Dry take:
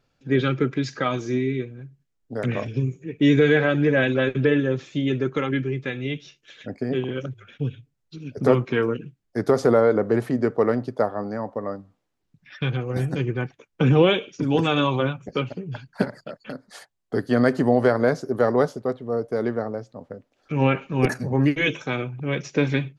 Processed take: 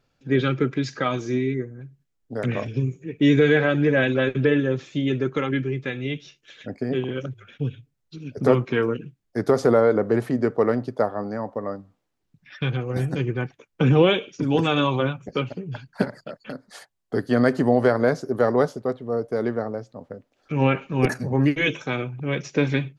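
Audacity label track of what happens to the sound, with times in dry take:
1.540000	1.800000	time-frequency box 2.2–5.6 kHz -24 dB

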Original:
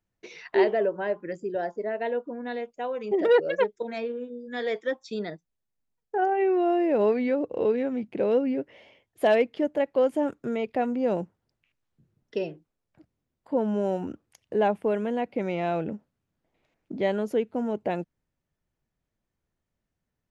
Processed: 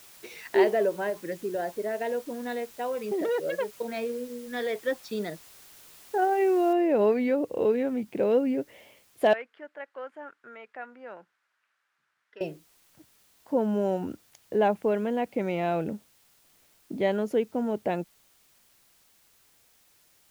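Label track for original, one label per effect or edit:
1.090000	4.870000	compression, threshold -25 dBFS
6.730000	6.730000	noise floor step -52 dB -63 dB
9.330000	12.410000	band-pass filter 1.5 kHz, Q 3

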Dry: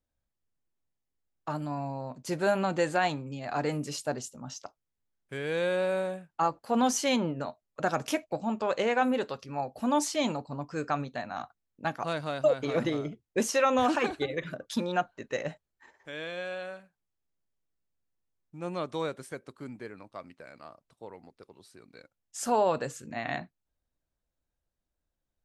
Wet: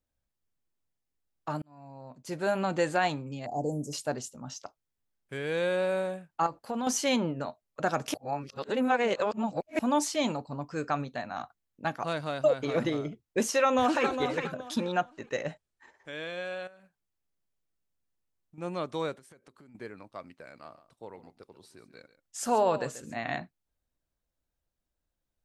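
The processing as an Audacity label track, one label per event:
1.620000	2.760000	fade in
3.460000	3.930000	elliptic band-stop 750–6300 Hz
6.460000	6.870000	compression 5:1, threshold -29 dBFS
8.140000	9.790000	reverse
13.540000	14.060000	echo throw 410 ms, feedback 25%, level -8 dB
14.760000	16.120000	careless resampling rate divided by 2×, down none, up filtered
16.670000	18.580000	compression 4:1, threshold -52 dBFS
19.140000	19.750000	compression 20:1, threshold -51 dBFS
20.500000	23.340000	delay 137 ms -14.5 dB

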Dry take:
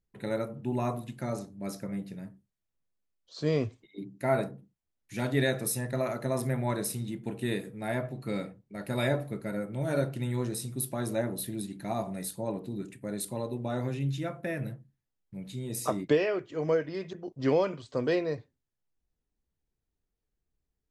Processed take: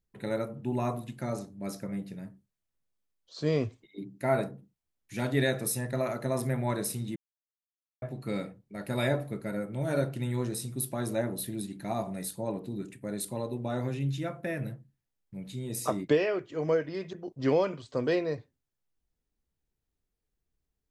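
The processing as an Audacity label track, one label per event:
7.160000	8.020000	mute

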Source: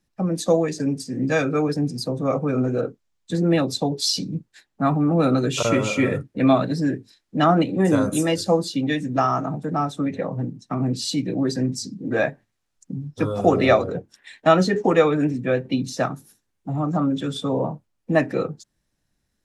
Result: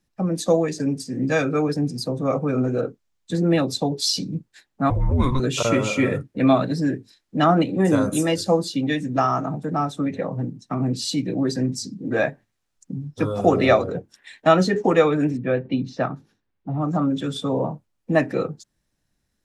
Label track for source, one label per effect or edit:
4.900000	5.400000	frequency shift -260 Hz
15.370000	16.820000	distance through air 230 m

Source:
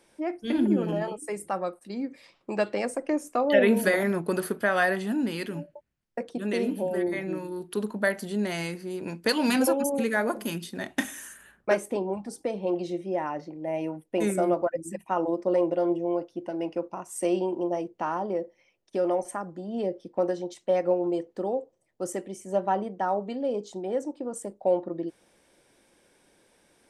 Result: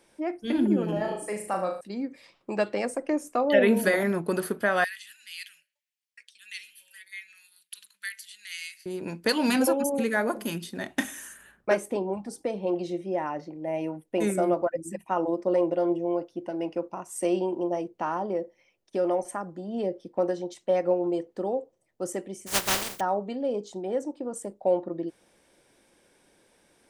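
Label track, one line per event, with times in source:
0.930000	1.810000	flutter echo walls apart 6.5 m, dies away in 0.48 s
4.840000	8.860000	inverse Chebyshev high-pass stop band from 820 Hz, stop band 50 dB
22.460000	22.990000	spectral contrast reduction exponent 0.17

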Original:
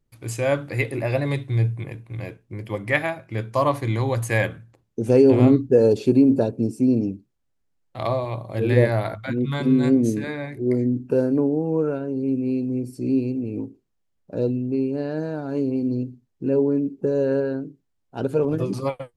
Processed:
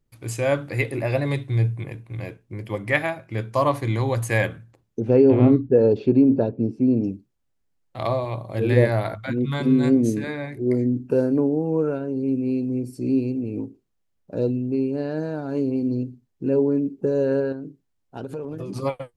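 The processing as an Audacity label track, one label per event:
5.000000	7.040000	distance through air 290 m
17.520000	18.760000	compression, threshold -28 dBFS

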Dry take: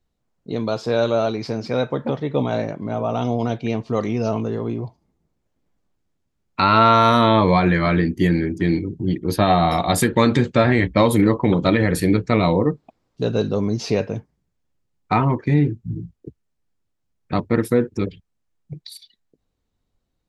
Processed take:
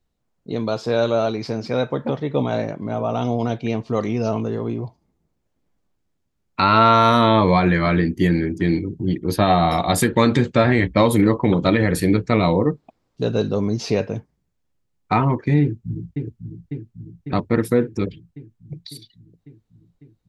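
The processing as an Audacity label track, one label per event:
15.610000	16.160000	echo throw 550 ms, feedback 70%, level -6.5 dB

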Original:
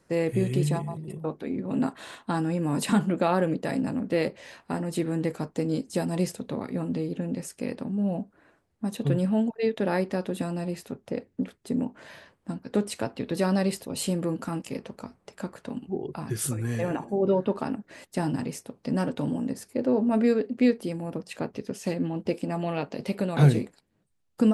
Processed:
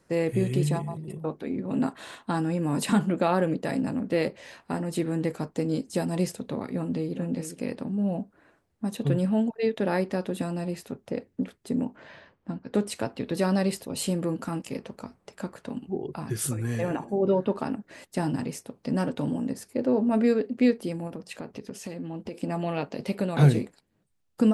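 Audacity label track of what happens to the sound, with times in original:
6.700000	7.160000	echo throw 410 ms, feedback 15%, level -10.5 dB
11.960000	12.740000	distance through air 150 m
21.070000	22.380000	compression 5:1, threshold -32 dBFS

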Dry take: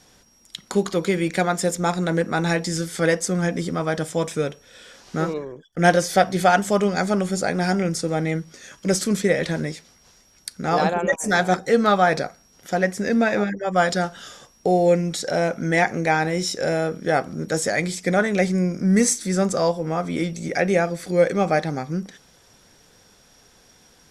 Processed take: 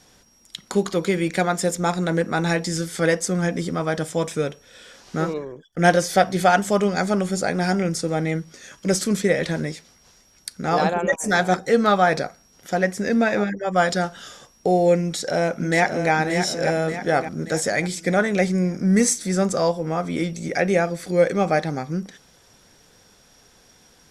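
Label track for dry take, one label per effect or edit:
15.010000	16.120000	echo throw 580 ms, feedback 50%, level -7 dB

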